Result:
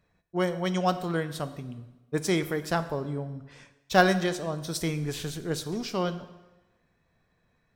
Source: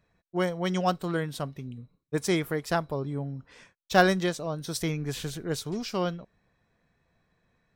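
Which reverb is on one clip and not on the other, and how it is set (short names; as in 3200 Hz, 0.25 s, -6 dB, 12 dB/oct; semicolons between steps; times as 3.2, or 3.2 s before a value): plate-style reverb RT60 1.1 s, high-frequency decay 0.9×, DRR 11 dB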